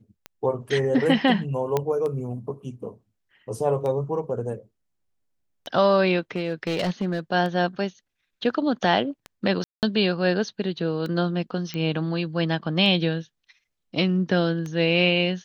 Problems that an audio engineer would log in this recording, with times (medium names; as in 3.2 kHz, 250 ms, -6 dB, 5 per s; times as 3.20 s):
tick 33 1/3 rpm -20 dBFS
1.77 s: pop -10 dBFS
6.36–7.20 s: clipped -20 dBFS
9.64–9.83 s: dropout 188 ms
11.74 s: pop -17 dBFS